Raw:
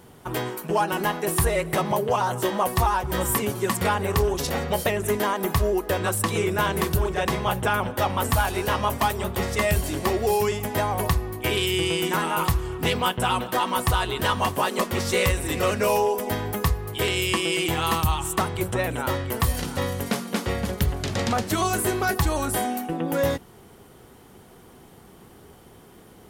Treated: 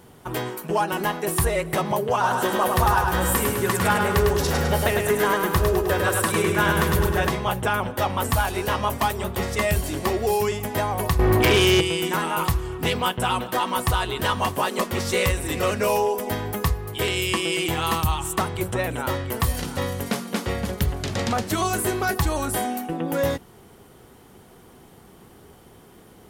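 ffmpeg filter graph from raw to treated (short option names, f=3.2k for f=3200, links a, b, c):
-filter_complex "[0:a]asettb=1/sr,asplit=3[a][b][c];[a]atrim=end=2.134[d];[b]atrim=start=2.13:end=7.29,asetpts=PTS-STARTPTS,afade=t=in:d=0.004:c=qsin,afade=t=out:st=5.156:d=0.004:c=qsin,equalizer=f=1.5k:w=3.5:g=6,asplit=2[e][f];[f]adelay=12,volume=-14dB[g];[e][g]amix=inputs=2:normalize=0,atrim=end_sample=227556,aecho=1:1:103|206|309|412|515|618|721:0.631|0.341|0.184|0.0994|0.0537|0.029|0.0156,atrim=end_sample=227556[h];[c]atrim=start=7.286[i];[d][h]acrossfade=d=0.004:c1=hsin:c2=qsin[j];[j][i]acrossfade=d=0.004:c1=qsin:c2=hsin,asettb=1/sr,asplit=3[k][l][m];[k]atrim=end=11.194[n];[l]atrim=start=11.19:end=11.81,asetpts=PTS-STARTPTS,afade=t=in:d=0.004:c=qsin,afade=t=out:st=0.616:d=0.004:c=qsin,bass=f=250:g=0,treble=f=4k:g=-7,acompressor=threshold=-30dB:ratio=8:attack=3.2:release=140:knee=1:detection=peak,aeval=exprs='0.224*sin(PI/2*6.31*val(0)/0.224)':c=same[o];[m]atrim=start=11.806[p];[n][o]acrossfade=d=0.004:c1=hsin:c2=qsin[q];[q][p]acrossfade=d=0.004:c1=qsin:c2=hsin"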